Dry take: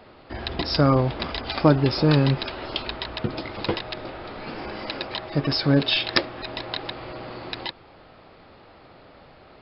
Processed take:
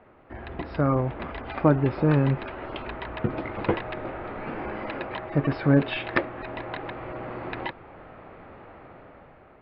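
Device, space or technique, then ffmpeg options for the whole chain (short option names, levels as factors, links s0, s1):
action camera in a waterproof case: -af "lowpass=f=2300:w=0.5412,lowpass=f=2300:w=1.3066,dynaudnorm=f=320:g=7:m=3.16,volume=0.531" -ar 24000 -c:a aac -b:a 96k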